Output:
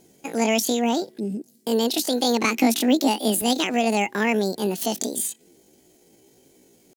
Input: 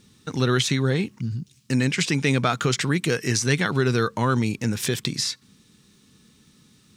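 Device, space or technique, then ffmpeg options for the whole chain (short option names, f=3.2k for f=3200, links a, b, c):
chipmunk voice: -filter_complex "[0:a]asettb=1/sr,asplit=3[a][b][c];[a]atrim=end=2.454[d];[b]atrim=start=2.45:end=3.44,asetpts=PTS-STARTPTS,afade=t=in:d=0.004:c=qsin,afade=t=out:st=0.986:d=0.004:c=qsin,lowshelf=f=100:t=q:w=3:g=-12[e];[c]atrim=start=3.436[f];[d][e]acrossfade=d=0.004:c1=hsin:c2=qsin[g];[g][f]acrossfade=d=0.004:c1=qsin:c2=hsin,asetrate=78577,aresample=44100,atempo=0.561231"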